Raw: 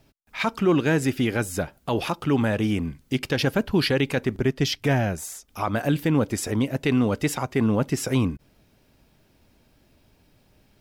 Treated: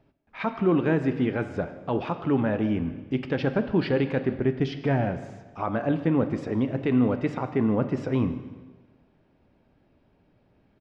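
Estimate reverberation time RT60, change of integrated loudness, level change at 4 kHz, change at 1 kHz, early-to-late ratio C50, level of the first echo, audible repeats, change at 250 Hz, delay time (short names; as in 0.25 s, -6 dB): 1.3 s, -2.0 dB, -12.5 dB, -2.5 dB, 10.5 dB, -20.5 dB, 2, -1.0 dB, 0.154 s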